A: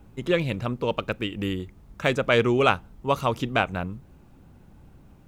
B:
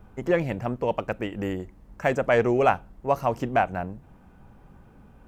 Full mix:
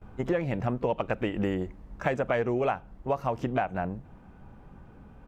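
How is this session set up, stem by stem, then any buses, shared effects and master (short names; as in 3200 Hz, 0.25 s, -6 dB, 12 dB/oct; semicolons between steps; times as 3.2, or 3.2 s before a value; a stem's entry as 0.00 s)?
-15.5 dB, 0.00 s, no send, dry
+2.0 dB, 16 ms, no send, dry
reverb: off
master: vocal rider 2 s; high shelf 6700 Hz -12 dB; compressor 6:1, threshold -24 dBFS, peak gain reduction 11 dB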